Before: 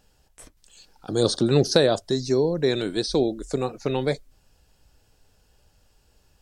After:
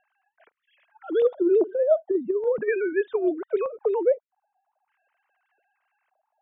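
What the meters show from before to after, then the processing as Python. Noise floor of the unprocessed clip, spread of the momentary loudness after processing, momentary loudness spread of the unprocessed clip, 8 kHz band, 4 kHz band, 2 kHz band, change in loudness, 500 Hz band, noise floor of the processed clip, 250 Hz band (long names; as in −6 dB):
−63 dBFS, 6 LU, 9 LU, below −40 dB, below −25 dB, −1.0 dB, −1.0 dB, +1.0 dB, −81 dBFS, −3.5 dB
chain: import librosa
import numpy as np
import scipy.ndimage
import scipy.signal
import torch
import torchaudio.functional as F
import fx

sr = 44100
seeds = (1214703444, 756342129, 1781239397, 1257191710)

y = fx.sine_speech(x, sr)
y = fx.over_compress(y, sr, threshold_db=-21.0, ratio=-0.5)
y = fx.filter_lfo_lowpass(y, sr, shape='square', hz=0.41, low_hz=780.0, high_hz=1900.0, q=1.8)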